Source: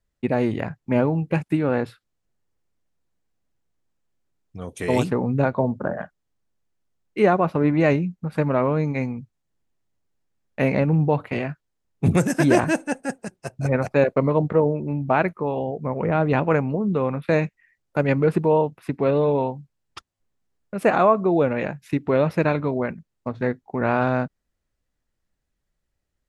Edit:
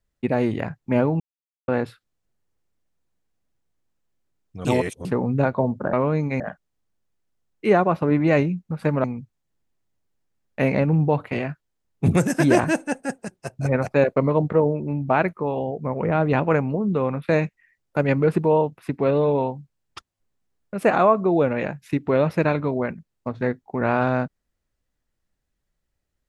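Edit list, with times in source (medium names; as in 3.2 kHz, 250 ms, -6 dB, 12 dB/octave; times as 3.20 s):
1.20–1.68 s: mute
4.65–5.05 s: reverse
8.57–9.04 s: move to 5.93 s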